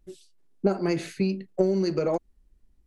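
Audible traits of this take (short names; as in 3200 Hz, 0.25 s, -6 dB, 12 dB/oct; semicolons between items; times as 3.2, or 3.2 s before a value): noise floor -65 dBFS; spectral tilt -6.5 dB/oct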